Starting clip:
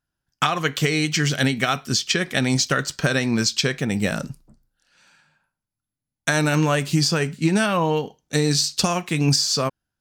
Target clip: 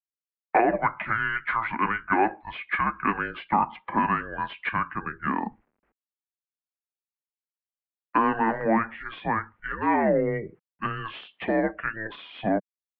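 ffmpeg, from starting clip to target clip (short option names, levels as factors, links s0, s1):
-filter_complex "[0:a]afftdn=nr=29:nf=-39,asplit=2[s0][s1];[s1]highpass=f=720:p=1,volume=2.82,asoftclip=type=tanh:threshold=0.473[s2];[s0][s2]amix=inputs=2:normalize=0,lowpass=f=1800:p=1,volume=0.501,acrossover=split=530|1200[s3][s4][s5];[s3]acompressor=threshold=0.0178:ratio=5[s6];[s6][s4][s5]amix=inputs=3:normalize=0,asetrate=33957,aresample=44100,acrusher=bits=10:mix=0:aa=0.000001,highpass=f=260:t=q:w=0.5412,highpass=f=260:t=q:w=1.307,lowpass=f=2500:t=q:w=0.5176,lowpass=f=2500:t=q:w=0.7071,lowpass=f=2500:t=q:w=1.932,afreqshift=-220,lowshelf=f=160:t=q:w=1.5:g=-6"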